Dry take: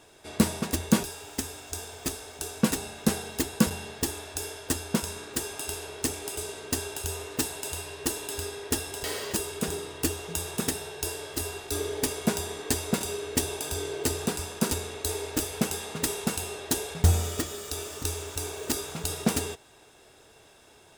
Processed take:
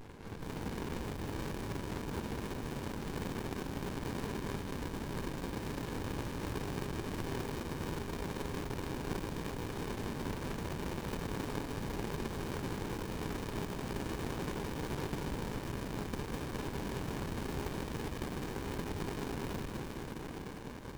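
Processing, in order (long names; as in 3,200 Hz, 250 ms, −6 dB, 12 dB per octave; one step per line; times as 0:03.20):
high-pass filter 130 Hz 24 dB per octave
parametric band 1,200 Hz +10.5 dB 2.3 octaves
brickwall limiter −15.5 dBFS, peak gain reduction 10.5 dB
reversed playback
downward compressor 6 to 1, threshold −36 dBFS, peak gain reduction 14 dB
reversed playback
wrap-around overflow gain 35.5 dB
feedback echo with a high-pass in the loop 207 ms, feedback 78%, high-pass 250 Hz, level −3 dB
convolution reverb RT60 2.8 s, pre-delay 6 ms, DRR −4 dB
windowed peak hold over 65 samples
level +1.5 dB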